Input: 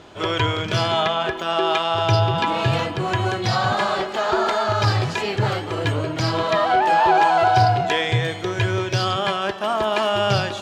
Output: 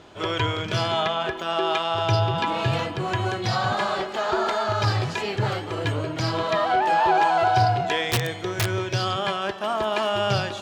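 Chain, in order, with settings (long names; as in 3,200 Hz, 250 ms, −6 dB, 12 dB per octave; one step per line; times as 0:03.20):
0:08.09–0:08.70: wrap-around overflow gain 12 dB
level −3.5 dB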